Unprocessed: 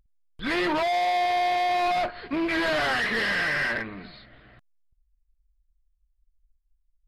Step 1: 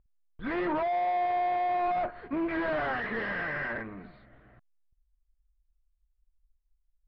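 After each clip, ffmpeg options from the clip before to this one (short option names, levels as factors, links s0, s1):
-af "lowpass=1500,volume=0.668"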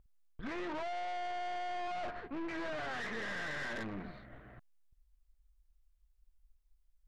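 -af "areverse,acompressor=threshold=0.0141:ratio=16,areverse,aeval=exprs='(tanh(141*val(0)+0.55)-tanh(0.55))/141':c=same,volume=1.88"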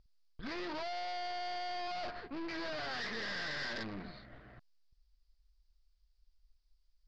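-af "lowpass=f=4800:t=q:w=6.1,volume=0.841"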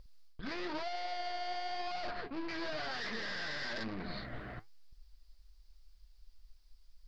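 -af "areverse,acompressor=threshold=0.00355:ratio=6,areverse,flanger=delay=1.8:depth=9.6:regen=69:speed=1:shape=triangular,volume=5.96"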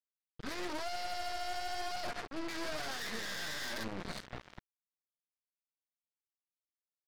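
-af "acrusher=bits=5:mix=0:aa=0.5,volume=0.891"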